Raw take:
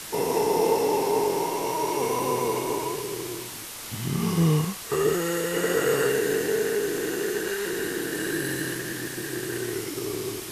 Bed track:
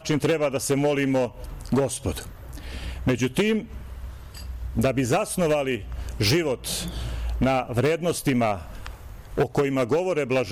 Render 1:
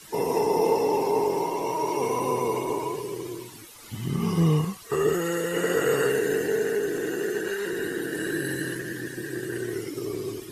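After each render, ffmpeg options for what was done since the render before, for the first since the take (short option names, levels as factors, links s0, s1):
-af "afftdn=nr=13:nf=-38"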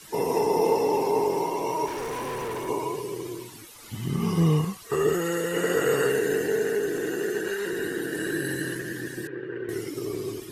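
-filter_complex "[0:a]asettb=1/sr,asplit=3[s0][s1][s2];[s0]atrim=end=1.864[s3];[s1]atrim=start=1.86:end=2.69,asetpts=PTS-STARTPTS,afade=t=in:d=0.004:c=qsin,afade=t=out:st=0.826:d=0.004:c=qsin,asoftclip=type=hard:threshold=0.0335[s4];[s2]atrim=start=2.686[s5];[s3][s4]acrossfade=d=0.004:c1=hsin:c2=qsin[s6];[s6][s5]acrossfade=d=0.004:c1=qsin:c2=hsin,asettb=1/sr,asplit=3[s7][s8][s9];[s7]atrim=end=9.274[s10];[s8]atrim=start=9.27:end=9.69,asetpts=PTS-STARTPTS,afade=t=in:d=0.004:c=qsin,afade=t=out:st=0.416:d=0.004:c=qsin,highpass=170,equalizer=f=210:t=q:w=4:g=-9,equalizer=f=320:t=q:w=4:g=-4,equalizer=f=490:t=q:w=4:g=4,equalizer=f=690:t=q:w=4:g=-10,equalizer=f=1800:t=q:w=4:g=-6,lowpass=f=2400:w=0.5412,lowpass=f=2400:w=1.3066[s11];[s9]atrim=start=9.686[s12];[s10][s11]acrossfade=d=0.004:c1=hsin:c2=qsin[s13];[s13][s12]acrossfade=d=0.004:c1=qsin:c2=hsin"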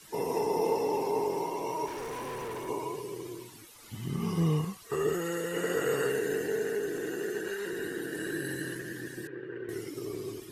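-af "volume=0.501"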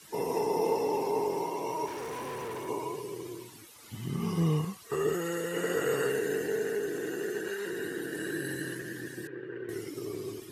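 -af "highpass=67"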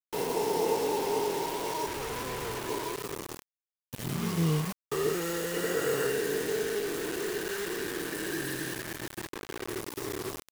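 -af "acrusher=bits=5:mix=0:aa=0.000001"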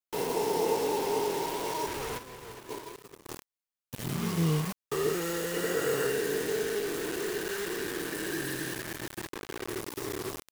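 -filter_complex "[0:a]asplit=3[s0][s1][s2];[s0]afade=t=out:st=2.17:d=0.02[s3];[s1]agate=range=0.0224:threshold=0.0398:ratio=3:release=100:detection=peak,afade=t=in:st=2.17:d=0.02,afade=t=out:st=3.25:d=0.02[s4];[s2]afade=t=in:st=3.25:d=0.02[s5];[s3][s4][s5]amix=inputs=3:normalize=0"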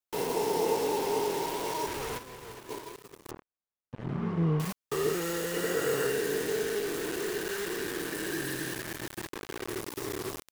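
-filter_complex "[0:a]asettb=1/sr,asplit=3[s0][s1][s2];[s0]atrim=end=3.314[s3];[s1]atrim=start=3.31:end=4.6,asetpts=PTS-STARTPTS,afade=t=in:d=0.004:c=qsin,afade=t=out:st=1.286:d=0.004:c=qsin,lowpass=1400[s4];[s2]atrim=start=4.596[s5];[s3][s4]acrossfade=d=0.004:c1=hsin:c2=qsin[s6];[s6][s5]acrossfade=d=0.004:c1=qsin:c2=hsin"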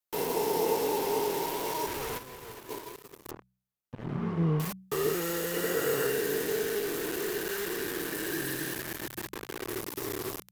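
-af "equalizer=f=13000:t=o:w=0.28:g=8.5,bandreject=f=62.71:t=h:w=4,bandreject=f=125.42:t=h:w=4,bandreject=f=188.13:t=h:w=4"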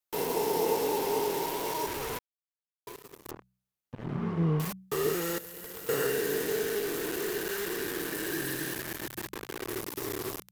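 -filter_complex "[0:a]asettb=1/sr,asplit=3[s0][s1][s2];[s0]atrim=end=5.384[s3];[s1]atrim=start=5.38:end=5.89,asetpts=PTS-STARTPTS,afade=t=in:d=0.004:c=qsin,afade=t=out:st=0.506:d=0.004:c=qsin,aeval=exprs='(mod(53.1*val(0)+1,2)-1)/53.1':c=same[s4];[s2]atrim=start=5.886[s5];[s3][s4]acrossfade=d=0.004:c1=hsin:c2=qsin[s6];[s6][s5]acrossfade=d=0.004:c1=qsin:c2=hsin,asplit=3[s7][s8][s9];[s7]atrim=end=2.19,asetpts=PTS-STARTPTS,afade=t=out:st=2.186:d=0.004:c=hsin[s10];[s8]atrim=start=2.19:end=2.87,asetpts=PTS-STARTPTS,volume=0[s11];[s9]atrim=start=2.87,asetpts=PTS-STARTPTS,afade=t=in:d=0.004:c=hsin[s12];[s10][s11][s12]concat=n=3:v=0:a=1"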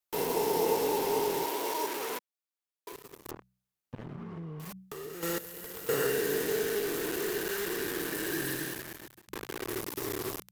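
-filter_complex "[0:a]asettb=1/sr,asplit=3[s0][s1][s2];[s0]atrim=end=1.454[s3];[s1]atrim=start=1.45:end=2.92,asetpts=PTS-STARTPTS,afade=t=in:d=0.004:c=qsin,afade=t=out:st=1.466:d=0.004:c=qsin,highpass=f=230:w=0.5412,highpass=f=230:w=1.3066[s4];[s2]atrim=start=2.916[s5];[s3][s4]acrossfade=d=0.004:c1=hsin:c2=qsin[s6];[s6][s5]acrossfade=d=0.004:c1=qsin:c2=hsin,asettb=1/sr,asplit=3[s7][s8][s9];[s7]atrim=end=4.004[s10];[s8]atrim=start=4:end=5.23,asetpts=PTS-STARTPTS,afade=t=in:d=0.004:c=qsin,afade=t=out:st=1.226:d=0.004:c=qsin,acompressor=threshold=0.0126:ratio=10:attack=3.2:release=140:knee=1:detection=peak[s11];[s9]atrim=start=5.226[s12];[s10][s11]acrossfade=d=0.004:c1=hsin:c2=qsin[s13];[s13][s12]acrossfade=d=0.004:c1=qsin:c2=hsin,asplit=2[s14][s15];[s14]atrim=end=9.28,asetpts=PTS-STARTPTS,afade=t=out:st=8.52:d=0.76[s16];[s15]atrim=start=9.28,asetpts=PTS-STARTPTS,afade=t=in:d=0.004:c=hsin[s17];[s16][s17]concat=n=2:v=0:a=1"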